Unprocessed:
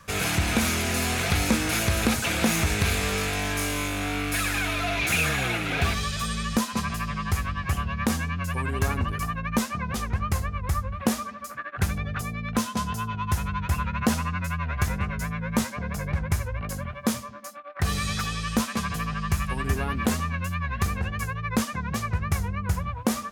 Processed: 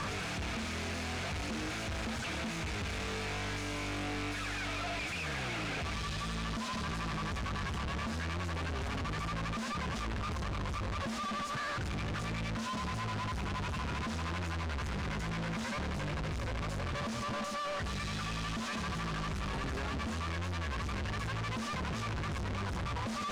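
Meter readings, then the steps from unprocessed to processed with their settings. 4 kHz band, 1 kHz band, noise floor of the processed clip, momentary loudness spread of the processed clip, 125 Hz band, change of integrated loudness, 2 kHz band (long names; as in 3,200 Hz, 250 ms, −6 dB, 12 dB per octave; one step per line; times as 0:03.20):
−8.0 dB, −7.5 dB, −38 dBFS, 1 LU, −9.5 dB, −9.5 dB, −9.5 dB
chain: sign of each sample alone
high-frequency loss of the air 99 metres
level −8.5 dB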